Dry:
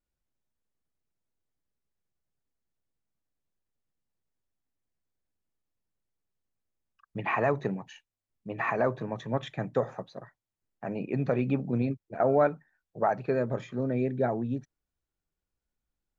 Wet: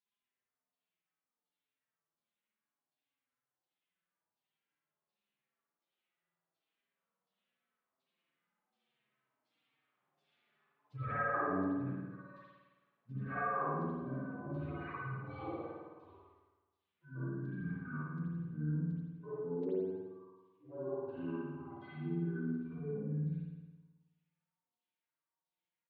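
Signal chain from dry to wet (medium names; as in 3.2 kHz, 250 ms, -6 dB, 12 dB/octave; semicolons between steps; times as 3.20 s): harmonic-percussive separation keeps harmonic; Doppler pass-by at 6.94 s, 16 m/s, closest 9.9 m; high-pass 220 Hz 24 dB/octave; treble shelf 2.3 kHz +8.5 dB; hum notches 60/120/180/240/300/360/420/480/540/600 Hz; compression 8:1, threshold -56 dBFS, peak gain reduction 24 dB; pitch shift -7 st; LFO low-pass saw down 2.2 Hz 670–4000 Hz; time stretch by phase-locked vocoder 1.6×; spring tank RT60 1.2 s, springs 53 ms, chirp 35 ms, DRR -8.5 dB; trim +11 dB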